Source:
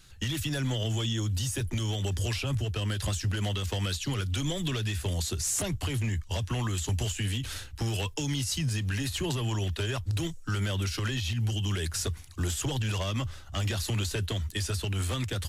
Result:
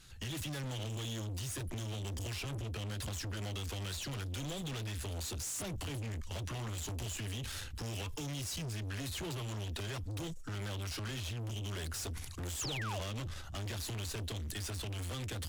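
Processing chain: valve stage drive 38 dB, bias 0.45; painted sound fall, 12.59–13.00 s, 510–7900 Hz -42 dBFS; decay stretcher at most 35 dB/s

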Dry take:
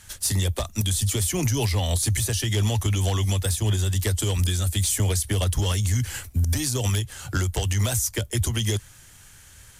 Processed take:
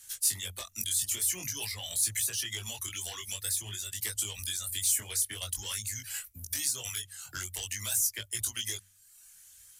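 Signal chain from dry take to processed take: reverb removal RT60 1.1 s; in parallel at -10 dB: saturation -31 dBFS, distortion -7 dB; on the sum: dynamic bell 1.9 kHz, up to +7 dB, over -46 dBFS, Q 0.77; chorus 0.49 Hz, delay 18.5 ms, depth 4.7 ms; pre-emphasis filter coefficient 0.9; de-hum 95.48 Hz, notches 2

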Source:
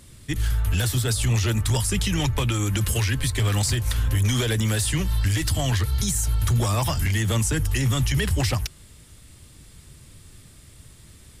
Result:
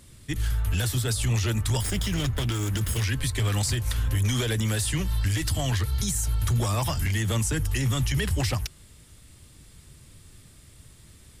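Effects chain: 1.81–3.04 s: comb filter that takes the minimum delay 0.58 ms; trim -3 dB

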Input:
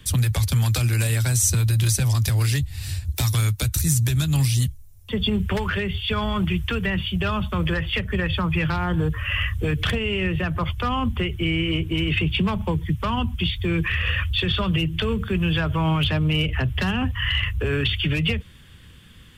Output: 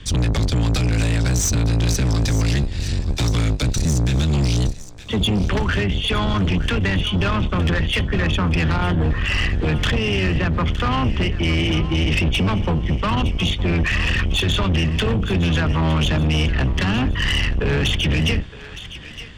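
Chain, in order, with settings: octave divider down 1 oct, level 0 dB; low-pass 6.7 kHz 24 dB/octave; saturation -21.5 dBFS, distortion -9 dB; on a send: thinning echo 914 ms, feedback 45%, high-pass 810 Hz, level -13 dB; on the sum: trim +6.5 dB

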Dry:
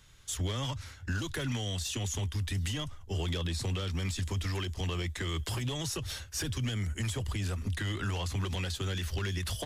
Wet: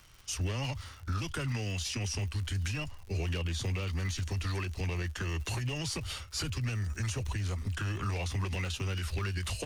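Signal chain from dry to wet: formant shift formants -3 st; crackle 140 per s -43 dBFS

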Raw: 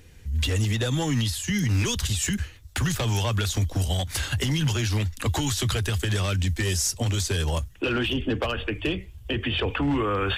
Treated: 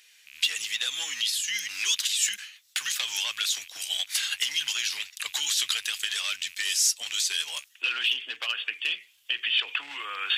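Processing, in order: rattle on loud lows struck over -28 dBFS, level -36 dBFS; Chebyshev high-pass 3 kHz, order 2; treble shelf 4 kHz -6 dB; trim +8 dB

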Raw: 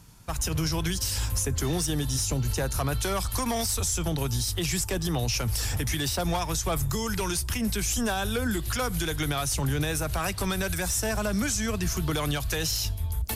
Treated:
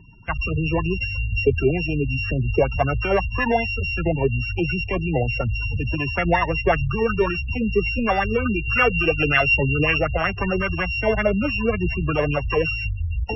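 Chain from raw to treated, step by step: sorted samples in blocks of 16 samples; low-pass 3.5 kHz 12 dB/octave; spectral gate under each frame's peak -20 dB strong; 8.56–9.98 s: peaking EQ 2.6 kHz +9 dB 0.78 oct; sweeping bell 5.4 Hz 400–1900 Hz +14 dB; trim +4.5 dB

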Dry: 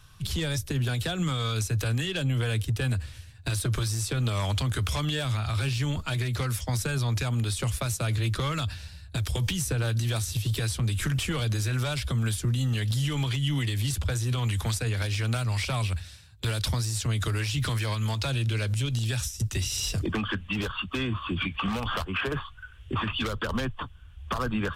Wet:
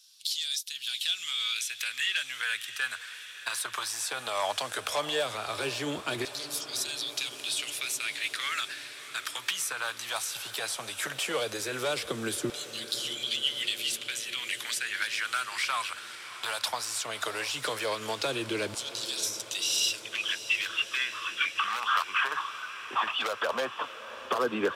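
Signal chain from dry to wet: LFO high-pass saw down 0.16 Hz 320–4800 Hz; echo that smears into a reverb 647 ms, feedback 69%, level -14 dB

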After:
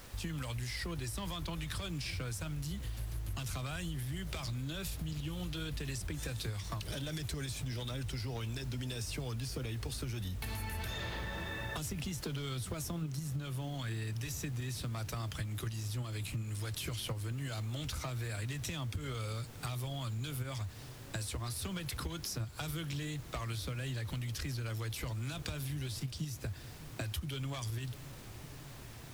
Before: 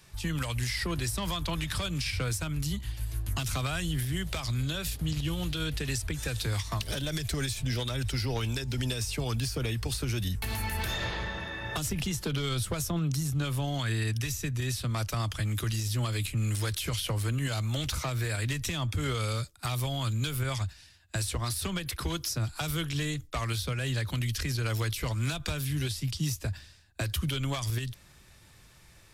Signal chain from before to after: high-pass 52 Hz 12 dB/octave; bass shelf 420 Hz +2.5 dB; flange 1.2 Hz, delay 1.3 ms, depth 2.8 ms, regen +83%; bass shelf 70 Hz +4.5 dB; bucket-brigade echo 598 ms, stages 2048, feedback 82%, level -21 dB; in parallel at +1 dB: level held to a coarse grid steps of 15 dB; on the sum: added noise pink -50 dBFS; compression, threshold -33 dBFS, peak gain reduction 11 dB; trim -2.5 dB

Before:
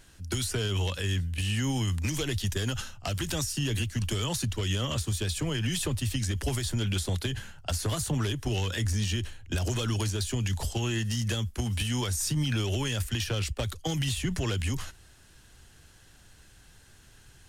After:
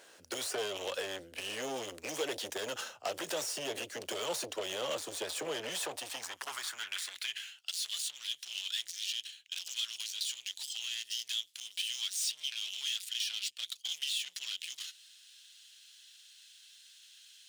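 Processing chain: median filter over 3 samples; saturation -32.5 dBFS, distortion -9 dB; high-pass sweep 510 Hz -> 3.4 kHz, 5.67–7.70 s; trim +1 dB

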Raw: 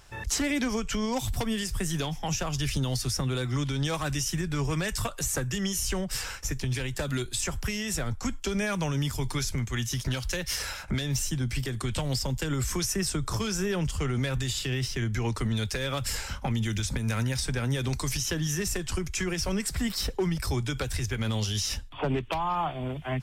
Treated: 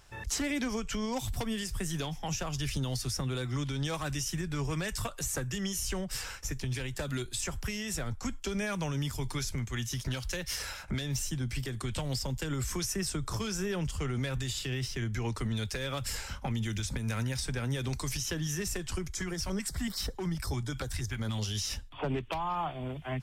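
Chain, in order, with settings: 19.12–21.42 s: LFO notch square 5.3 Hz 460–2600 Hz; trim -4.5 dB

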